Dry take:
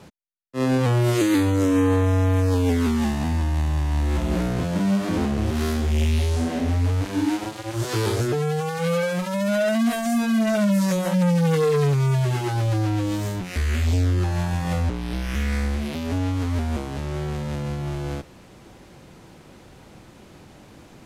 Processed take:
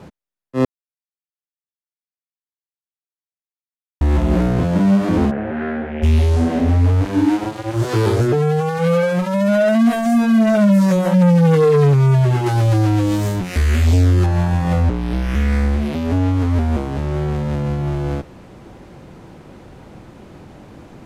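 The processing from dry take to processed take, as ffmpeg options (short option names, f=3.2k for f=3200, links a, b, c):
-filter_complex "[0:a]asplit=3[a][b][c];[a]afade=t=out:st=5.3:d=0.02[d];[b]highpass=250,equalizer=f=350:t=q:w=4:g=-9,equalizer=f=580:t=q:w=4:g=3,equalizer=f=1.1k:t=q:w=4:g=-9,equalizer=f=1.6k:t=q:w=4:g=7,lowpass=f=2.3k:w=0.5412,lowpass=f=2.3k:w=1.3066,afade=t=in:st=5.3:d=0.02,afade=t=out:st=6.02:d=0.02[e];[c]afade=t=in:st=6.02:d=0.02[f];[d][e][f]amix=inputs=3:normalize=0,asettb=1/sr,asplit=3[g][h][i];[g]atrim=end=12.464[j];[h]atrim=start=12.46:end=14.26,asetpts=PTS-STARTPTS,afade=t=in:d=0.004:c=qsin,afade=t=out:st=1.796:d=0.004:c=qsin,highshelf=f=3.7k:g=8.5[k];[i]atrim=start=14.256[l];[j][k]acrossfade=d=0.004:c1=hsin:c2=qsin[m];[m][l]acrossfade=d=0.004:c1=qsin:c2=hsin,asplit=3[n][o][p];[n]atrim=end=0.65,asetpts=PTS-STARTPTS,afade=t=out:st=0.646:d=0.004:c=hsin[q];[o]atrim=start=0.65:end=4.01,asetpts=PTS-STARTPTS,volume=0[r];[p]atrim=start=4.01,asetpts=PTS-STARTPTS,afade=t=in:d=0.004:c=hsin[s];[q][r][s]concat=n=3:v=0:a=1,highshelf=f=2.3k:g=-10.5,volume=7.5dB"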